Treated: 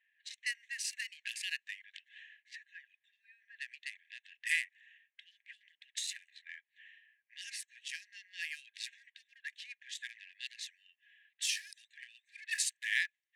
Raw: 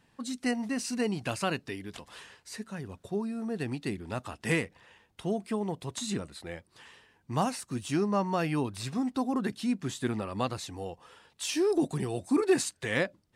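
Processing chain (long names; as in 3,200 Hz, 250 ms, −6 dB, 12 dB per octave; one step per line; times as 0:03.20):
adaptive Wiener filter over 9 samples
linear-phase brick-wall high-pass 1,600 Hz
low-pass that shuts in the quiet parts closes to 2,400 Hz, open at −38 dBFS
level +1 dB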